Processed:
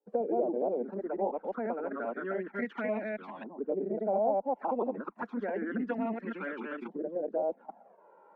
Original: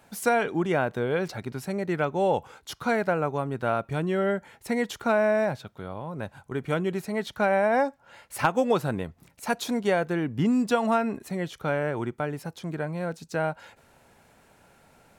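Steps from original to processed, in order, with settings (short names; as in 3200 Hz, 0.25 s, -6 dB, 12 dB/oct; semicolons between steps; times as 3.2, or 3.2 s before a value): reverse delay 0.25 s, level 0 dB; steep high-pass 200 Hz 96 dB/oct; gate with hold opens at -46 dBFS; high shelf 2800 Hz -9.5 dB; compressor 2:1, threshold -36 dBFS, peak gain reduction 11.5 dB; added harmonics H 6 -44 dB, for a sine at -17.5 dBFS; LFO low-pass saw up 0.16 Hz 490–2900 Hz; time stretch by phase-locked vocoder 0.55×; envelope flanger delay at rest 2.3 ms, full sweep at -25.5 dBFS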